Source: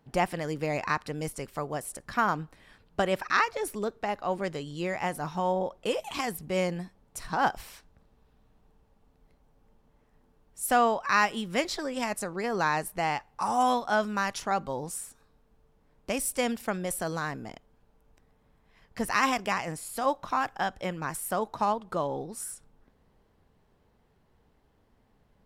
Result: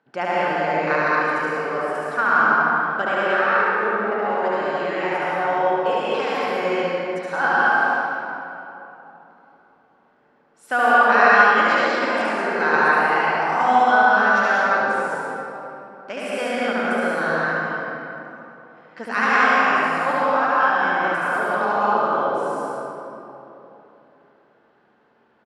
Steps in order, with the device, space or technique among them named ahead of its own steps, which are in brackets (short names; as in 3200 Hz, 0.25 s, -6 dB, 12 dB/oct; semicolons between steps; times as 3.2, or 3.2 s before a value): 3.31–4.12 LPF 1000 Hz 6 dB/oct; station announcement (BPF 300–3800 Hz; bell 1500 Hz +11 dB 0.3 oct; loudspeakers at several distances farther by 25 m -1 dB, 78 m -12 dB; reverb RT60 3.3 s, pre-delay 0.1 s, DRR -7 dB); gain -1 dB